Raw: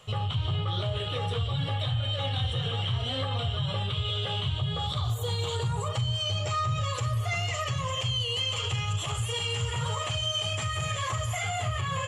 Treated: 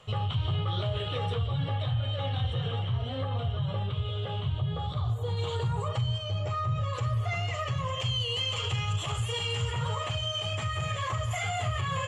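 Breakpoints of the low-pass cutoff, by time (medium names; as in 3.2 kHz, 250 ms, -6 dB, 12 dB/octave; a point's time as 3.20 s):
low-pass 6 dB/octave
3.5 kHz
from 1.35 s 1.7 kHz
from 2.79 s 1 kHz
from 5.37 s 2.3 kHz
from 6.18 s 1.1 kHz
from 6.93 s 2.1 kHz
from 8.00 s 5.1 kHz
from 9.72 s 2.8 kHz
from 11.31 s 5.8 kHz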